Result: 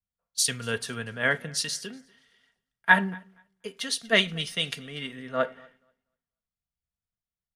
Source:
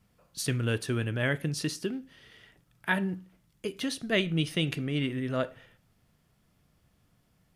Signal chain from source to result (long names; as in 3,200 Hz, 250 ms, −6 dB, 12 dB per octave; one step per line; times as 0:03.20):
in parallel at +1 dB: downward compressor, threshold −40 dBFS, peak gain reduction 17 dB
on the sum: thirty-one-band graphic EQ 315 Hz −11 dB, 2,500 Hz −5 dB, 12,500 Hz −8 dB
downsampling to 32,000 Hz
low-shelf EQ 490 Hz −11.5 dB
comb filter 4.3 ms, depth 40%
on a send: repeating echo 242 ms, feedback 47%, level −19 dB
on the sum: multiband upward and downward expander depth 100%
level +1.5 dB